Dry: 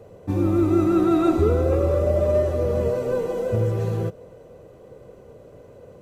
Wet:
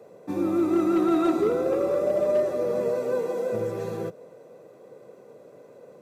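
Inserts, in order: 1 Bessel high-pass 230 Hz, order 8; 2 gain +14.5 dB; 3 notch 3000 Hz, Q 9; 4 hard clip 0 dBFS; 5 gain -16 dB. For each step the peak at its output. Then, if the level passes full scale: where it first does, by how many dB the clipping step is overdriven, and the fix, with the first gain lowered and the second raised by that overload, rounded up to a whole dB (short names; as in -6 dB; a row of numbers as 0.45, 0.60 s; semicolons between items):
-10.5, +4.0, +4.0, 0.0, -16.0 dBFS; step 2, 4.0 dB; step 2 +10.5 dB, step 5 -12 dB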